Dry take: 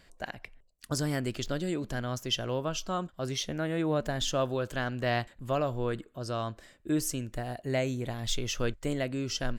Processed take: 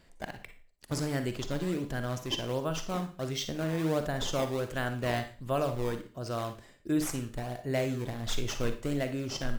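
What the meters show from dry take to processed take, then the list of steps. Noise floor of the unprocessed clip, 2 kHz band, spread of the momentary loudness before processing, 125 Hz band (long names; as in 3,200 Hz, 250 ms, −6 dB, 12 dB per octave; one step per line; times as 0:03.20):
−62 dBFS, −1.5 dB, 7 LU, −0.5 dB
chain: in parallel at −5 dB: sample-and-hold swept by an LFO 18×, swing 160% 1.4 Hz
on the sum: four-comb reverb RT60 0.37 s, DRR 8 dB
level −4.5 dB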